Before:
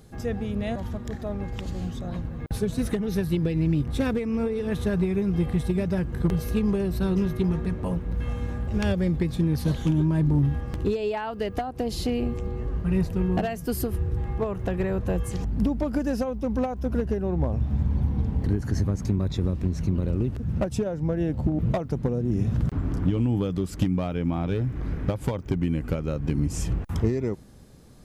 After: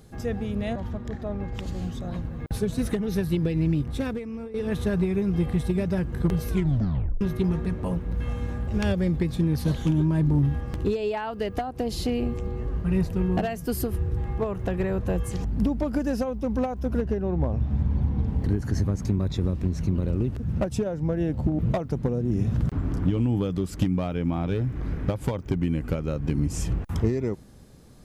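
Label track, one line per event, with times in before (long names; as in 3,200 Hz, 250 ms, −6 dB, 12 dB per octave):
0.730000	1.550000	low-pass filter 3,200 Hz 6 dB per octave
3.660000	4.540000	fade out, to −13.5 dB
6.480000	6.480000	tape stop 0.73 s
17.010000	18.280000	high-shelf EQ 7,800 Hz −10 dB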